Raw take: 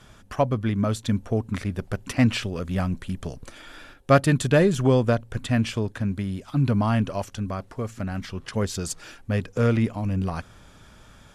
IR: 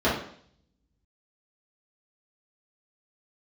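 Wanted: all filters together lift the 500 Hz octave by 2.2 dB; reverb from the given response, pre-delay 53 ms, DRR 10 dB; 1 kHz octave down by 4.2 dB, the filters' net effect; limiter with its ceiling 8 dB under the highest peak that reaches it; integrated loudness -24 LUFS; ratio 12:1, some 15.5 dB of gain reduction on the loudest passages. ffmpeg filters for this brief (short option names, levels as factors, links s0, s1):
-filter_complex "[0:a]equalizer=f=500:t=o:g=5,equalizer=f=1000:t=o:g=-9,acompressor=threshold=0.0398:ratio=12,alimiter=level_in=1.26:limit=0.0631:level=0:latency=1,volume=0.794,asplit=2[s0][s1];[1:a]atrim=start_sample=2205,adelay=53[s2];[s1][s2]afir=irnorm=-1:irlink=0,volume=0.0473[s3];[s0][s3]amix=inputs=2:normalize=0,volume=3.55"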